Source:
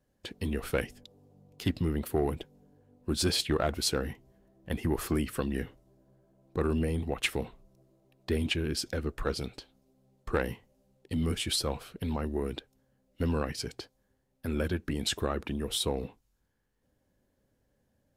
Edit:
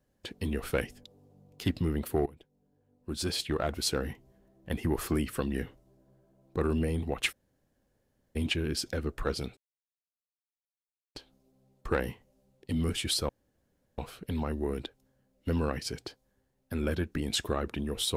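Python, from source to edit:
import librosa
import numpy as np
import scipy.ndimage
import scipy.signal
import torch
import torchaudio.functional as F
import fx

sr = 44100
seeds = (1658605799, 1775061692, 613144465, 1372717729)

y = fx.edit(x, sr, fx.fade_in_from(start_s=2.26, length_s=1.83, floor_db=-20.5),
    fx.room_tone_fill(start_s=7.32, length_s=1.04, crossfade_s=0.02),
    fx.insert_silence(at_s=9.57, length_s=1.58),
    fx.insert_room_tone(at_s=11.71, length_s=0.69), tone=tone)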